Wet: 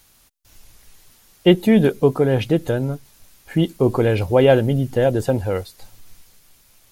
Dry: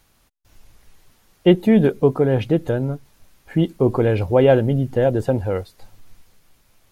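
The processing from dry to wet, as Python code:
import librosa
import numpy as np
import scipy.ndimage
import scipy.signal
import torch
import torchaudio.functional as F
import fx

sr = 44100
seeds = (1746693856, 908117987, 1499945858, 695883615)

y = fx.high_shelf(x, sr, hz=3000.0, db=10.0)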